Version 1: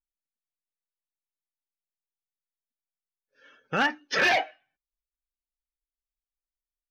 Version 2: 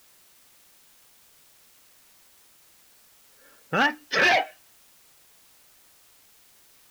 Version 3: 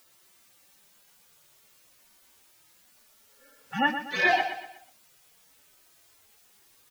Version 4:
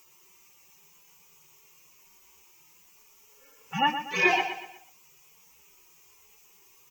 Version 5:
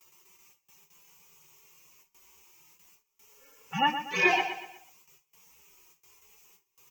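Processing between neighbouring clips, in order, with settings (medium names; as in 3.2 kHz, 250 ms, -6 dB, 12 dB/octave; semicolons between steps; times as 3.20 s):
level-controlled noise filter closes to 1.2 kHz, open at -24.5 dBFS; in parallel at -9 dB: word length cut 8-bit, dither triangular
harmonic-percussive separation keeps harmonic; on a send: feedback delay 121 ms, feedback 39%, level -9.5 dB
rippled EQ curve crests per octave 0.75, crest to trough 13 dB
gate with hold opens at -47 dBFS; trim -1 dB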